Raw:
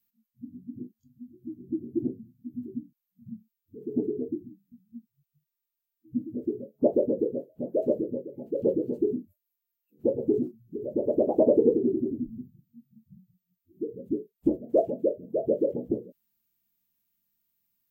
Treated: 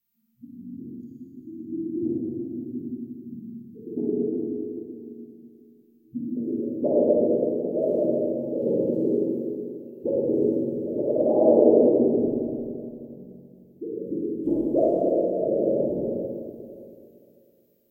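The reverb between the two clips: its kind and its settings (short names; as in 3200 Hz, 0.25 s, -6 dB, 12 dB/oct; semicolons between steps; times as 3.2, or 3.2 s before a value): Schroeder reverb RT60 2.6 s, DRR -7.5 dB; gain -3.5 dB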